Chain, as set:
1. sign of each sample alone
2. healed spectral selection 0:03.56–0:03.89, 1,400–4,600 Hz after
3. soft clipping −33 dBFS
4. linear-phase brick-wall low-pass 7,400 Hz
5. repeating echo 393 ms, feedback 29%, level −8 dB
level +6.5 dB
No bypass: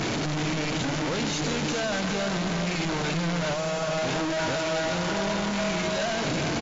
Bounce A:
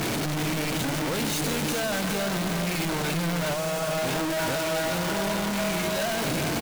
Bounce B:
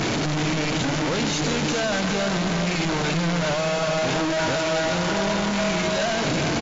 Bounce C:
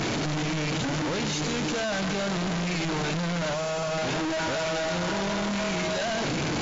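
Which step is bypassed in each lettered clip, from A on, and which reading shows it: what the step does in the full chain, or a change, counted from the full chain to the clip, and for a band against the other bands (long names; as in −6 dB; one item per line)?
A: 4, change in crest factor −3.0 dB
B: 3, distortion level −25 dB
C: 5, change in crest factor −2.0 dB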